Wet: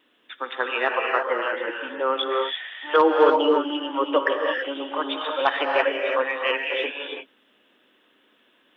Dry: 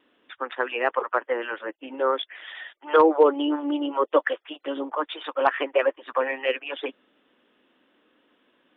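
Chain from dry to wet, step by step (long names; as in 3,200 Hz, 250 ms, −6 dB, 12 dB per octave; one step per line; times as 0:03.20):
high-shelf EQ 2,400 Hz +10.5 dB
mains-hum notches 50/100 Hz
reverb whose tail is shaped and stops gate 360 ms rising, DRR 1 dB
level −2 dB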